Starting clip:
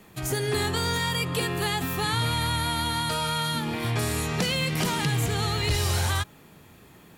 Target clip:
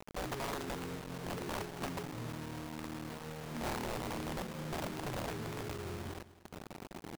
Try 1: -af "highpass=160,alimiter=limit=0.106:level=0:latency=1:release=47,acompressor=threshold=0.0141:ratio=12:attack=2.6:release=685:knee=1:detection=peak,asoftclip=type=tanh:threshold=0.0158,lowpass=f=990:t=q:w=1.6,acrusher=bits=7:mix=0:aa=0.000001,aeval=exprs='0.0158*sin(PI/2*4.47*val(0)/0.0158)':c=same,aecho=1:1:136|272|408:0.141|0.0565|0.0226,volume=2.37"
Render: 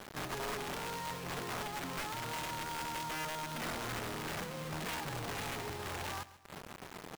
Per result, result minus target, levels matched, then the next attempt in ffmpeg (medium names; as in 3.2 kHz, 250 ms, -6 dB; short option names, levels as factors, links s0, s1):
saturation: distortion +19 dB; echo 67 ms early; 250 Hz band -5.0 dB
-af "highpass=160,alimiter=limit=0.106:level=0:latency=1:release=47,acompressor=threshold=0.0141:ratio=12:attack=2.6:release=685:knee=1:detection=peak,asoftclip=type=tanh:threshold=0.0562,lowpass=f=990:t=q:w=1.6,acrusher=bits=7:mix=0:aa=0.000001,aeval=exprs='0.0158*sin(PI/2*4.47*val(0)/0.0158)':c=same,aecho=1:1:136|272|408:0.141|0.0565|0.0226,volume=2.37"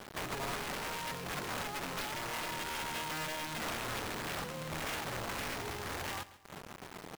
echo 67 ms early; 250 Hz band -6.5 dB
-af "highpass=160,alimiter=limit=0.106:level=0:latency=1:release=47,acompressor=threshold=0.0141:ratio=12:attack=2.6:release=685:knee=1:detection=peak,asoftclip=type=tanh:threshold=0.0562,lowpass=f=990:t=q:w=1.6,acrusher=bits=7:mix=0:aa=0.000001,aeval=exprs='0.0158*sin(PI/2*4.47*val(0)/0.0158)':c=same,aecho=1:1:203|406|609:0.141|0.0565|0.0226,volume=2.37"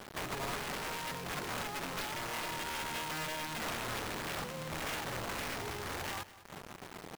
250 Hz band -6.5 dB
-af "highpass=160,alimiter=limit=0.106:level=0:latency=1:release=47,acompressor=threshold=0.0141:ratio=12:attack=2.6:release=685:knee=1:detection=peak,asoftclip=type=tanh:threshold=0.0562,lowpass=f=320:t=q:w=1.6,acrusher=bits=7:mix=0:aa=0.000001,aeval=exprs='0.0158*sin(PI/2*4.47*val(0)/0.0158)':c=same,aecho=1:1:203|406|609:0.141|0.0565|0.0226,volume=2.37"